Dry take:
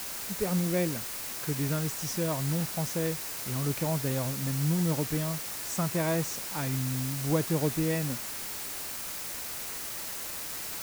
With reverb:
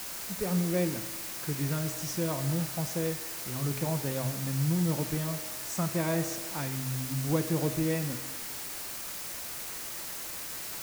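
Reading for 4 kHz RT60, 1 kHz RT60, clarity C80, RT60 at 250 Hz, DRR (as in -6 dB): 1.3 s, 1.4 s, 12.0 dB, 1.4 s, 8.0 dB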